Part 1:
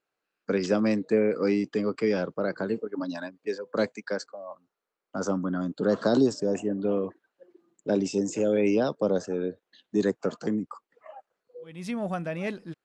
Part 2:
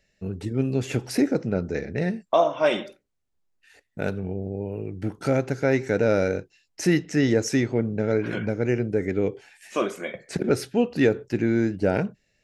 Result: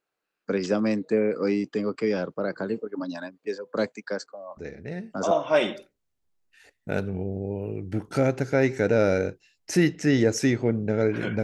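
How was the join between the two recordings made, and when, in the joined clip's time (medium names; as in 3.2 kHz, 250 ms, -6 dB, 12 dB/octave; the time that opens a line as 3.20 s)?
part 1
4.57 s: add part 2 from 1.67 s 0.74 s -9 dB
5.31 s: go over to part 2 from 2.41 s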